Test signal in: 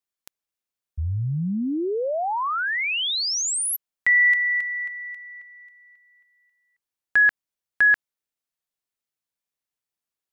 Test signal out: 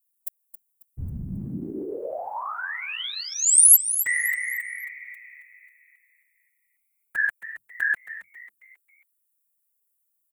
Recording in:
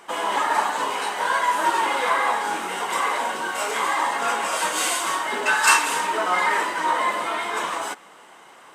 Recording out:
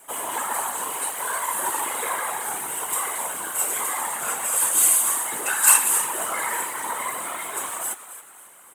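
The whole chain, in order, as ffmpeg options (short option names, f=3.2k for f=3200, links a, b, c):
-filter_complex "[0:a]asplit=5[a][b][c][d][e];[b]adelay=271,afreqshift=130,volume=-13dB[f];[c]adelay=542,afreqshift=260,volume=-21.4dB[g];[d]adelay=813,afreqshift=390,volume=-29.8dB[h];[e]adelay=1084,afreqshift=520,volume=-38.2dB[i];[a][f][g][h][i]amix=inputs=5:normalize=0,afftfilt=real='hypot(re,im)*cos(2*PI*random(0))':imag='hypot(re,im)*sin(2*PI*random(1))':win_size=512:overlap=0.75,aexciter=amount=15.7:drive=2.6:freq=7.7k,volume=-1.5dB"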